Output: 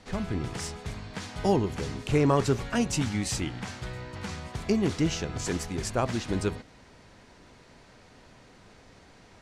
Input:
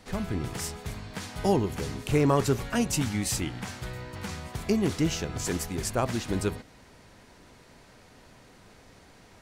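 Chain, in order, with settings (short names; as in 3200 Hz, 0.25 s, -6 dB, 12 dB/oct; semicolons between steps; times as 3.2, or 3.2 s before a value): LPF 7700 Hz 12 dB/oct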